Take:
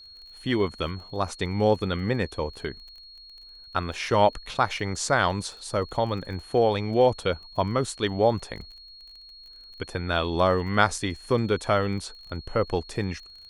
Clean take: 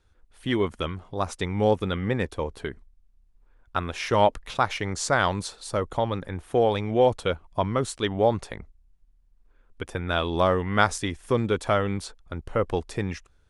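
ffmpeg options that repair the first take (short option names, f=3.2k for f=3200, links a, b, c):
-af "adeclick=t=4,bandreject=f=4.3k:w=30"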